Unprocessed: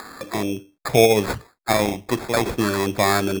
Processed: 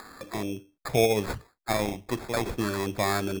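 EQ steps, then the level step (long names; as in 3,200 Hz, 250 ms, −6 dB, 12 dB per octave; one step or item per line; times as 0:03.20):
low-shelf EQ 66 Hz +9 dB
−8.0 dB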